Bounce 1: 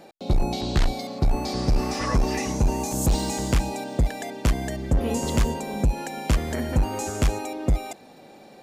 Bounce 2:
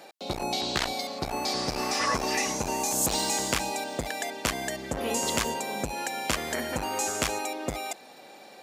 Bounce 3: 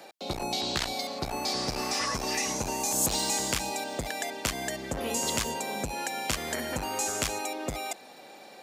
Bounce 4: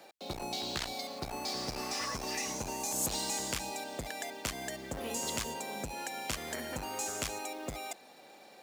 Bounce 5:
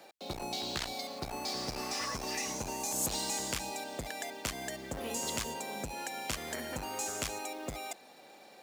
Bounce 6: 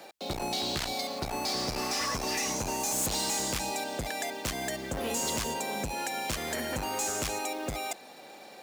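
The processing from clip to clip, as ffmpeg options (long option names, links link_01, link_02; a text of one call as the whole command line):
ffmpeg -i in.wav -af "highpass=frequency=950:poles=1,volume=4.5dB" out.wav
ffmpeg -i in.wav -filter_complex "[0:a]acrossover=split=190|3000[link_01][link_02][link_03];[link_02]acompressor=threshold=-30dB:ratio=6[link_04];[link_01][link_04][link_03]amix=inputs=3:normalize=0" out.wav
ffmpeg -i in.wav -af "acrusher=bits=4:mode=log:mix=0:aa=0.000001,volume=-6.5dB" out.wav
ffmpeg -i in.wav -af anull out.wav
ffmpeg -i in.wav -af "asoftclip=type=hard:threshold=-33dB,volume=6.5dB" out.wav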